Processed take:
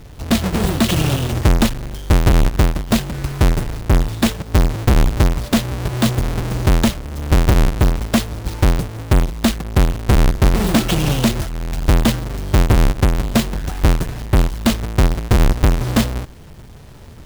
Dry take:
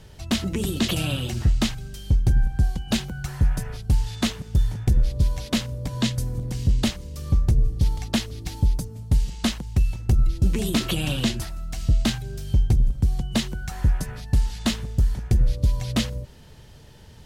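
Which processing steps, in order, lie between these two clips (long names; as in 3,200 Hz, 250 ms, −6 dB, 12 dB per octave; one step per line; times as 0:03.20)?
each half-wave held at its own peak
level +3 dB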